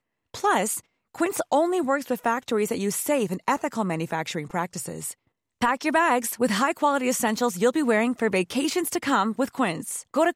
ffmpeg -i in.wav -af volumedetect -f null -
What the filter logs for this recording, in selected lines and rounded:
mean_volume: -25.0 dB
max_volume: -10.0 dB